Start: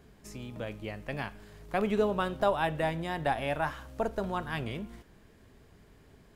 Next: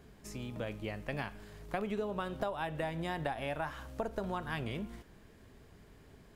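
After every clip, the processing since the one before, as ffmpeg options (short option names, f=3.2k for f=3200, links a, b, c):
-af "acompressor=threshold=-32dB:ratio=10"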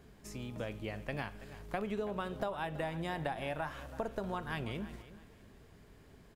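-af "aecho=1:1:329|658|987:0.168|0.0504|0.0151,volume=-1dB"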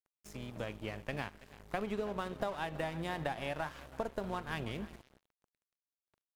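-af "aeval=exprs='sgn(val(0))*max(abs(val(0))-0.00355,0)':c=same,volume=1.5dB"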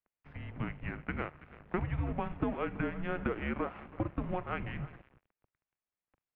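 -af "highpass=f=180:t=q:w=0.5412,highpass=f=180:t=q:w=1.307,lowpass=f=2.9k:t=q:w=0.5176,lowpass=f=2.9k:t=q:w=0.7071,lowpass=f=2.9k:t=q:w=1.932,afreqshift=-350,volume=4dB"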